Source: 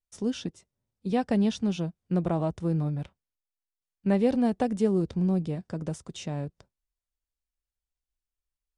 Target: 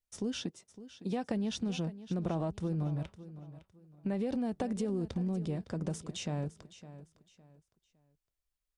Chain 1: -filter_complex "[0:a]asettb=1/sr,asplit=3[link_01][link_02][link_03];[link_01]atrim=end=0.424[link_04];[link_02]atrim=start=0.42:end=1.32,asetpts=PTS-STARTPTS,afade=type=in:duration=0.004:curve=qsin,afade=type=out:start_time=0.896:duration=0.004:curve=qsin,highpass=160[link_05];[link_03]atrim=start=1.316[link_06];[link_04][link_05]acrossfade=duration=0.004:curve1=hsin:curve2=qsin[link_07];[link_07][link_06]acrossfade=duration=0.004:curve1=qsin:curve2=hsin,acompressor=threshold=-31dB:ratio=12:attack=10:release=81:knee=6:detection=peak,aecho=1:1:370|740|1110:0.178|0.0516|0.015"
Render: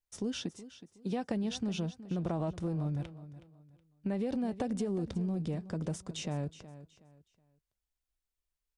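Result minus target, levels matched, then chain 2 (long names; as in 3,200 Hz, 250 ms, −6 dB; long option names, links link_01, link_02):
echo 189 ms early
-filter_complex "[0:a]asettb=1/sr,asplit=3[link_01][link_02][link_03];[link_01]atrim=end=0.424[link_04];[link_02]atrim=start=0.42:end=1.32,asetpts=PTS-STARTPTS,afade=type=in:duration=0.004:curve=qsin,afade=type=out:start_time=0.896:duration=0.004:curve=qsin,highpass=160[link_05];[link_03]atrim=start=1.316[link_06];[link_04][link_05]acrossfade=duration=0.004:curve1=hsin:curve2=qsin[link_07];[link_07][link_06]acrossfade=duration=0.004:curve1=qsin:curve2=hsin,acompressor=threshold=-31dB:ratio=12:attack=10:release=81:knee=6:detection=peak,aecho=1:1:559|1118|1677:0.178|0.0516|0.015"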